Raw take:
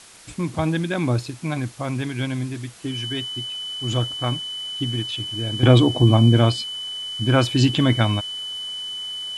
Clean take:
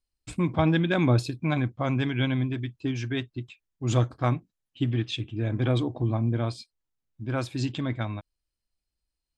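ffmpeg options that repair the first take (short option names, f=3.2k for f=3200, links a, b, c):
-af "bandreject=f=3k:w=30,afwtdn=0.0063,asetnsamples=n=441:p=0,asendcmd='5.63 volume volume -11.5dB',volume=0dB"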